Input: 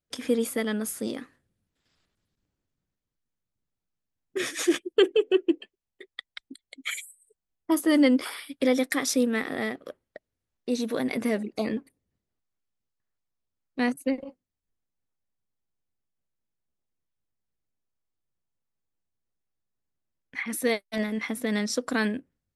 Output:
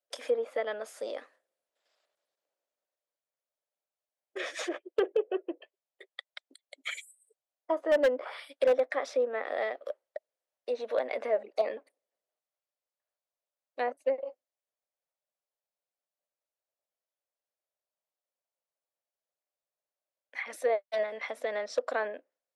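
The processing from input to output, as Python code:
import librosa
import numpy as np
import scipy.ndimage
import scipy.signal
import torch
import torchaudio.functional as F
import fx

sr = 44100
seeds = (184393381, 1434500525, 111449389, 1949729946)

y = fx.env_lowpass_down(x, sr, base_hz=1400.0, full_db=-21.0)
y = fx.ladder_highpass(y, sr, hz=530.0, resonance_pct=65)
y = 10.0 ** (-24.0 / 20.0) * (np.abs((y / 10.0 ** (-24.0 / 20.0) + 3.0) % 4.0 - 2.0) - 1.0)
y = F.gain(torch.from_numpy(y), 6.5).numpy()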